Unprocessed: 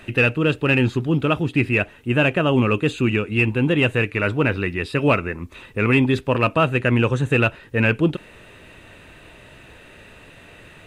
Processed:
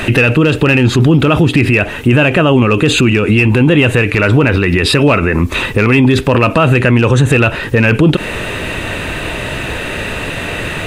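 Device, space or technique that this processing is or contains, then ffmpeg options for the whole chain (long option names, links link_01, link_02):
loud club master: -af "acompressor=threshold=-23dB:ratio=2,asoftclip=type=hard:threshold=-14dB,alimiter=level_in=26dB:limit=-1dB:release=50:level=0:latency=1,volume=-1dB"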